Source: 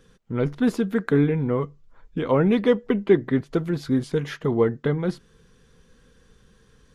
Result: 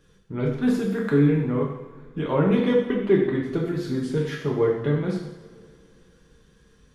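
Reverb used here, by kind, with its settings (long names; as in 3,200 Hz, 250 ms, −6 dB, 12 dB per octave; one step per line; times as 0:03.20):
coupled-rooms reverb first 0.85 s, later 3.3 s, from −21 dB, DRR −2 dB
level −5 dB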